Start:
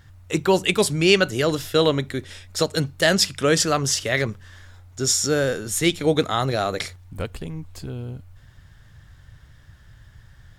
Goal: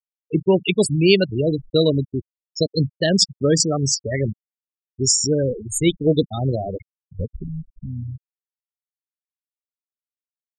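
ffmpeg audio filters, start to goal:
-af "equalizer=f=1.3k:w=0.6:g=-12.5,aeval=exprs='sgn(val(0))*max(abs(val(0))-0.00501,0)':c=same,afftfilt=real='re*gte(hypot(re,im),0.1)':imag='im*gte(hypot(re,im),0.1)':win_size=1024:overlap=0.75,volume=6dB"

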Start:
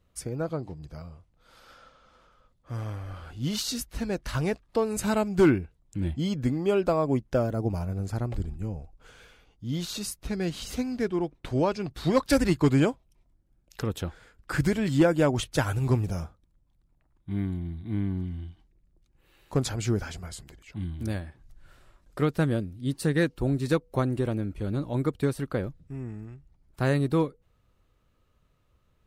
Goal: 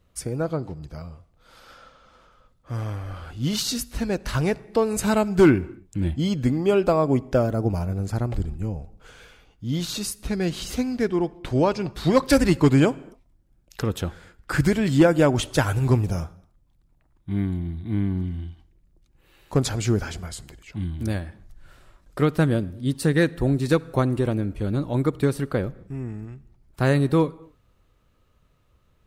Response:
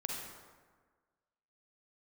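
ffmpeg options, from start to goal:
-filter_complex "[0:a]asplit=2[a][b];[1:a]atrim=start_sample=2205,afade=t=out:st=0.33:d=0.01,atrim=end_sample=14994[c];[b][c]afir=irnorm=-1:irlink=0,volume=-19.5dB[d];[a][d]amix=inputs=2:normalize=0,volume=4dB"

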